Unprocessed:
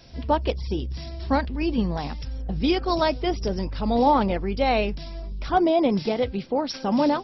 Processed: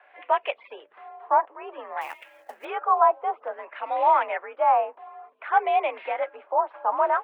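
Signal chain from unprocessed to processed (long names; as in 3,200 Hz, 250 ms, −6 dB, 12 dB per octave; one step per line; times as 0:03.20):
auto-filter low-pass sine 0.56 Hz 950–2,400 Hz
single-sideband voice off tune +58 Hz 540–3,000 Hz
0:02.01–0:02.65: floating-point word with a short mantissa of 2 bits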